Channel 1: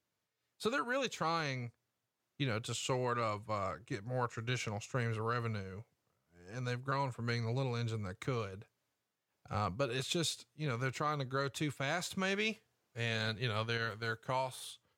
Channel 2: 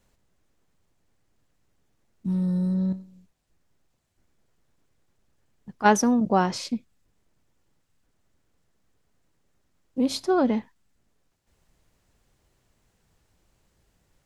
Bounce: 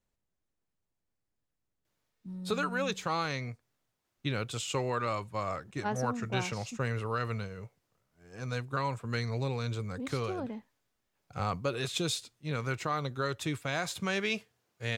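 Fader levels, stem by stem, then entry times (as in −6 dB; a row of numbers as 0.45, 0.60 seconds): +3.0, −16.0 decibels; 1.85, 0.00 seconds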